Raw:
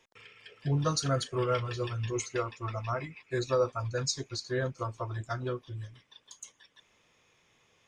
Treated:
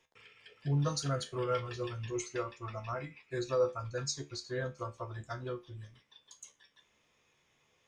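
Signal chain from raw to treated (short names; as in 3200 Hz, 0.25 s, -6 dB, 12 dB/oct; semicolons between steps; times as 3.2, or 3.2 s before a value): resonator 72 Hz, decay 0.24 s, harmonics all, mix 70%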